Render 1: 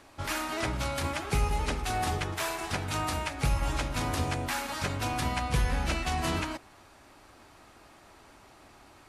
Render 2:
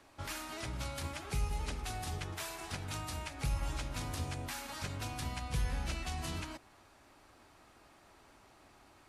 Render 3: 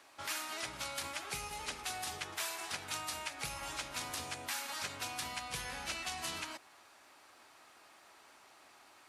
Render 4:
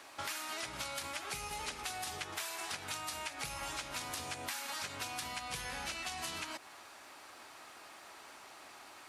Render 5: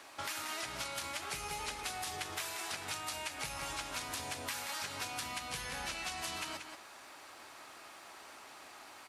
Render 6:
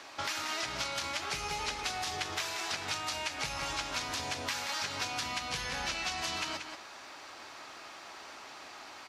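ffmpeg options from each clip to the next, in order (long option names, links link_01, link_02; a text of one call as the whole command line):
ffmpeg -i in.wav -filter_complex "[0:a]acrossover=split=180|3000[link_01][link_02][link_03];[link_02]acompressor=threshold=-36dB:ratio=6[link_04];[link_01][link_04][link_03]amix=inputs=3:normalize=0,volume=-6.5dB" out.wav
ffmpeg -i in.wav -af "highpass=frequency=980:poles=1,volume=4.5dB" out.wav
ffmpeg -i in.wav -af "acompressor=threshold=-45dB:ratio=6,volume=7dB" out.wav
ffmpeg -i in.wav -af "aecho=1:1:183:0.447" out.wav
ffmpeg -i in.wav -af "highshelf=frequency=7500:width_type=q:width=1.5:gain=-8.5,volume=4.5dB" out.wav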